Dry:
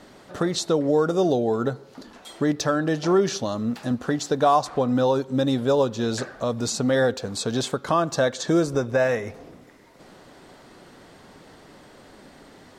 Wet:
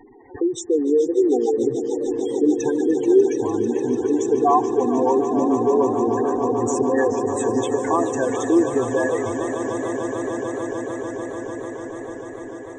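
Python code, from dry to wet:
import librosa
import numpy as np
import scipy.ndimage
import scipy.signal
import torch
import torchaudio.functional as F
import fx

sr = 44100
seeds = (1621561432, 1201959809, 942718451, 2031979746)

p1 = fx.fixed_phaser(x, sr, hz=890.0, stages=8)
p2 = fx.spec_gate(p1, sr, threshold_db=-10, keep='strong')
p3 = p2 + fx.echo_swell(p2, sr, ms=148, loudest=8, wet_db=-13.5, dry=0)
p4 = fx.echo_warbled(p3, sr, ms=430, feedback_pct=65, rate_hz=2.8, cents=180, wet_db=-14)
y = p4 * 10.0 ** (5.5 / 20.0)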